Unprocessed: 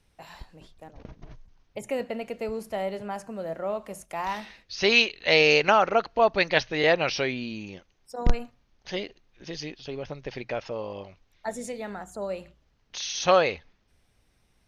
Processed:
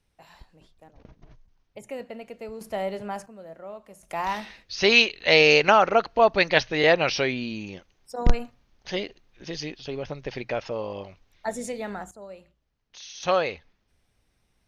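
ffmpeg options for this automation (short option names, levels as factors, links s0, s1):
-af "asetnsamples=n=441:p=0,asendcmd='2.61 volume volume 1dB;3.26 volume volume -9.5dB;4.03 volume volume 2.5dB;12.11 volume volume -10dB;13.23 volume volume -3dB',volume=0.501"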